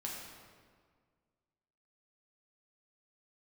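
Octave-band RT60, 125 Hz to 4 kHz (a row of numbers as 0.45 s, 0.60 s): 2.1 s, 2.0 s, 1.8 s, 1.7 s, 1.5 s, 1.2 s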